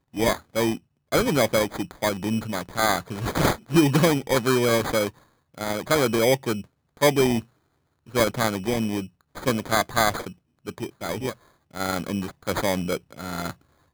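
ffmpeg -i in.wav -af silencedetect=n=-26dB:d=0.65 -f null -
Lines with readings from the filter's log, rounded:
silence_start: 7.39
silence_end: 8.15 | silence_duration: 0.76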